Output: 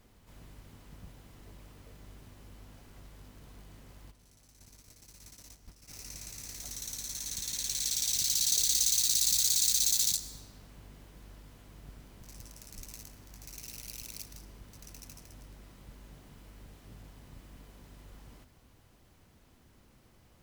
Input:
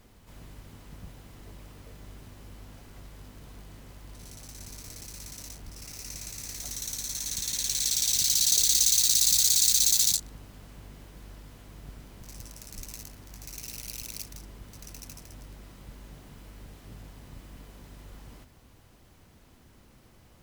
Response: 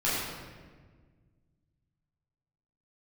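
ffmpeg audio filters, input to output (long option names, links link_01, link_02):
-filter_complex "[0:a]asplit=3[link_01][link_02][link_03];[link_01]afade=type=out:start_time=4.1:duration=0.02[link_04];[link_02]agate=range=-11dB:threshold=-41dB:ratio=16:detection=peak,afade=type=in:start_time=4.1:duration=0.02,afade=type=out:start_time=5.88:duration=0.02[link_05];[link_03]afade=type=in:start_time=5.88:duration=0.02[link_06];[link_04][link_05][link_06]amix=inputs=3:normalize=0,asplit=2[link_07][link_08];[link_08]tiltshelf=frequency=970:gain=-9.5[link_09];[1:a]atrim=start_sample=2205,adelay=104[link_10];[link_09][link_10]afir=irnorm=-1:irlink=0,volume=-33dB[link_11];[link_07][link_11]amix=inputs=2:normalize=0,volume=-5dB"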